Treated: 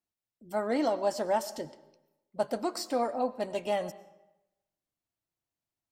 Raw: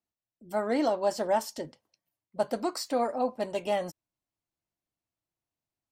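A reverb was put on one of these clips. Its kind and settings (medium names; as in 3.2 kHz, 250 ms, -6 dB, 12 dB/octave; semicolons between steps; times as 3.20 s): algorithmic reverb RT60 0.97 s, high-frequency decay 0.75×, pre-delay 65 ms, DRR 17 dB; trim -1.5 dB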